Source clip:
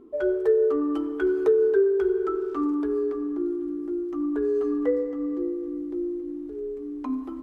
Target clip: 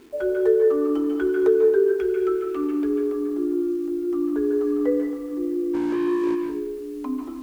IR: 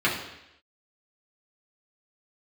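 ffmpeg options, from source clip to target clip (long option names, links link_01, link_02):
-filter_complex "[0:a]asettb=1/sr,asplit=3[link_01][link_02][link_03];[link_01]atrim=end=1.994[link_04];[link_02]atrim=start=1.99:end=2.89,asetpts=PTS-STARTPTS,afade=type=in:duration=0.004:curve=qsin,afade=type=out:start_time=0.896:duration=0.004:curve=qsin,equalizer=frequency=160:width_type=o:width=0.67:gain=-6,equalizer=frequency=1000:width_type=o:width=0.67:gain=-7,equalizer=frequency=2500:width_type=o:width=0.67:gain=10[link_05];[link_03]atrim=start=2.886[link_06];[link_04][link_05]acrossfade=duration=0.004:curve1=hsin:curve2=qsin[link_07];[link_07][link_06]acrossfade=duration=0.004:curve1=qsin:curve2=hsin,acrusher=bits=8:mix=0:aa=0.000001,asplit=3[link_08][link_09][link_10];[link_08]afade=type=out:start_time=5.73:duration=0.02[link_11];[link_09]asplit=2[link_12][link_13];[link_13]highpass=frequency=720:poles=1,volume=31dB,asoftclip=type=tanh:threshold=-22dB[link_14];[link_12][link_14]amix=inputs=2:normalize=0,lowpass=frequency=1900:poles=1,volume=-6dB,afade=type=in:start_time=5.73:duration=0.02,afade=type=out:start_time=6.34:duration=0.02[link_15];[link_10]afade=type=in:start_time=6.34:duration=0.02[link_16];[link_11][link_15][link_16]amix=inputs=3:normalize=0,asplit=2[link_17][link_18];[1:a]atrim=start_sample=2205,adelay=141[link_19];[link_18][link_19]afir=irnorm=-1:irlink=0,volume=-17.5dB[link_20];[link_17][link_20]amix=inputs=2:normalize=0"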